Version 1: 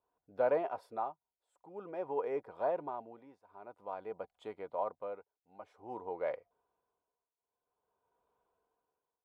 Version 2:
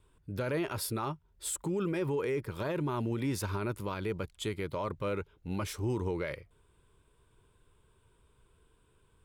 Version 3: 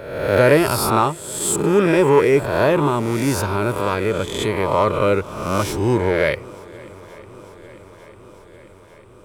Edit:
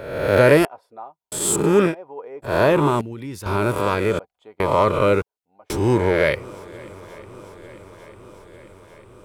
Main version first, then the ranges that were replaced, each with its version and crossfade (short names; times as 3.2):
3
0.65–1.32 from 1
1.9–2.47 from 1, crossfade 0.10 s
3.01–3.46 from 2
4.19–4.6 from 1
5.22–5.7 from 1